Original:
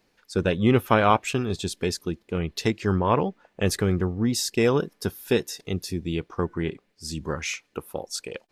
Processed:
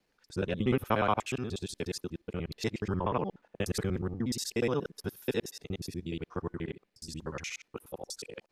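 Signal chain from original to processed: time reversed locally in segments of 60 ms; trim -8.5 dB

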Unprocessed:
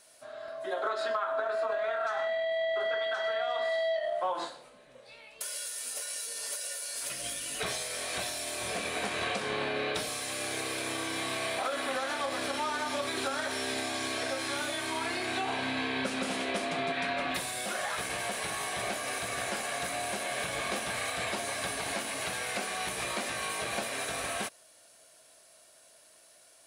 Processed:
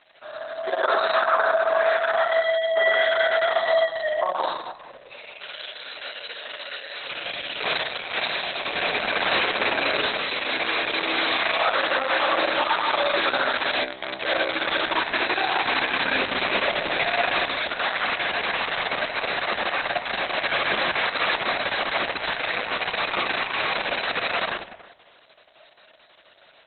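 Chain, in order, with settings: high-pass 480 Hz 6 dB/octave; peaking EQ 9.9 kHz -7 dB 0.27 oct; reverberation RT60 1.0 s, pre-delay 58 ms, DRR -1 dB; trim +8.5 dB; Opus 6 kbps 48 kHz

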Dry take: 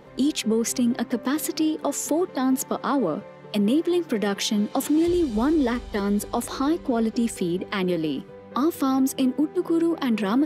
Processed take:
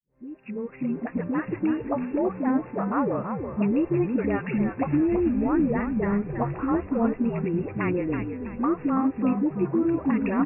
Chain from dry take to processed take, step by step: fade-in on the opening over 1.38 s; brick-wall FIR low-pass 2.8 kHz; phase dispersion highs, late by 86 ms, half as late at 380 Hz; on a send: frequency-shifting echo 327 ms, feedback 35%, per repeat -63 Hz, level -6.5 dB; on the sum: trim -2 dB

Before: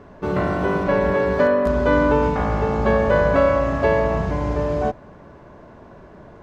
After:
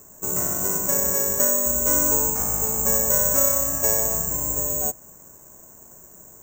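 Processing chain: careless resampling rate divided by 6×, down filtered, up zero stuff; trim -11 dB

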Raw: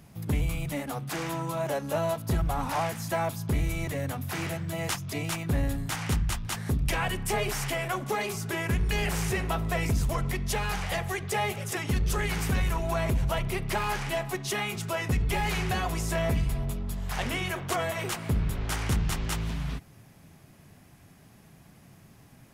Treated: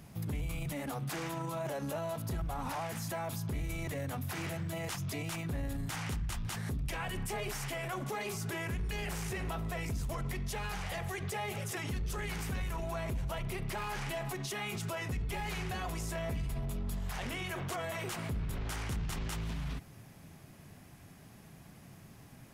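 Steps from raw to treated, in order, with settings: peak limiter -30 dBFS, peak gain reduction 11 dB

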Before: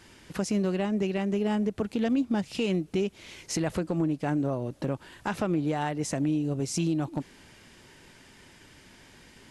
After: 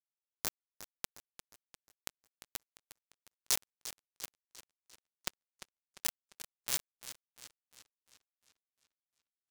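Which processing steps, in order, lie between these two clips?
peak limiter -21.5 dBFS, peak gain reduction 4 dB; 4.09–6.63 s: resonant low shelf 120 Hz +7 dB, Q 1.5; echo that smears into a reverb 721 ms, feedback 42%, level -9.5 dB; harmonic-percussive split harmonic -18 dB; amplifier tone stack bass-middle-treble 5-5-5; simulated room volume 38 m³, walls mixed, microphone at 0.93 m; compression 3:1, threshold -49 dBFS, peak gain reduction 12.5 dB; hum notches 60/120/180/240/300/360 Hz; companded quantiser 2-bit; modulated delay 353 ms, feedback 50%, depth 156 cents, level -13 dB; trim +13 dB

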